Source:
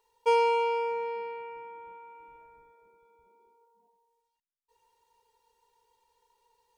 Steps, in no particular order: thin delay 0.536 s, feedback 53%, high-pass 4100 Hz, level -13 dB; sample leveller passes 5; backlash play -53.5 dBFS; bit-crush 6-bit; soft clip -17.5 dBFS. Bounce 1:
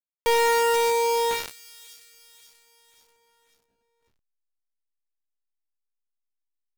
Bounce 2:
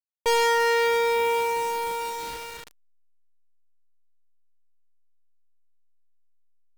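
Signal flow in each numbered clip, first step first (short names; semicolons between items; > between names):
soft clip > bit-crush > sample leveller > thin delay > backlash; soft clip > thin delay > sample leveller > bit-crush > backlash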